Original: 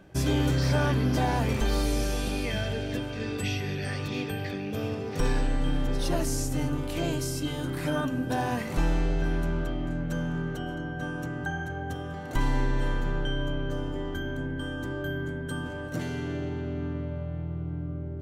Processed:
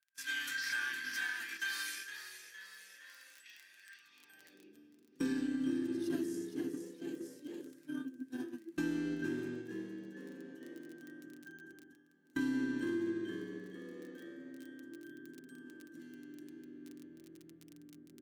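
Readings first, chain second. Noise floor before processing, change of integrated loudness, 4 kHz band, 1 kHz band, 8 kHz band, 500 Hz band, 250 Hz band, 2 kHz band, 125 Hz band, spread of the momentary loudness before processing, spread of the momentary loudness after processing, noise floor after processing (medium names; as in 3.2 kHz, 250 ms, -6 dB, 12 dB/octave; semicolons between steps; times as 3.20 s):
-35 dBFS, -9.5 dB, -10.0 dB, -22.5 dB, -11.0 dB, -14.0 dB, -8.0 dB, -5.5 dB, -26.5 dB, 8 LU, 20 LU, -64 dBFS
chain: gate -24 dBFS, range -32 dB; treble shelf 12 kHz +5 dB; small resonant body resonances 260/1600 Hz, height 16 dB, ringing for 70 ms; frequency-shifting echo 462 ms, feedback 34%, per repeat +76 Hz, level -10 dB; crackle 16 per s -46 dBFS; amplifier tone stack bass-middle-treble 6-0-2; comb 5.8 ms, depth 30%; reverse; upward compressor, threshold -54 dBFS; reverse; high-pass sweep 1.6 kHz -> 310 Hz, 3.97–4.81 s; compression 3:1, threshold -45 dBFS, peak gain reduction 8 dB; trim +11.5 dB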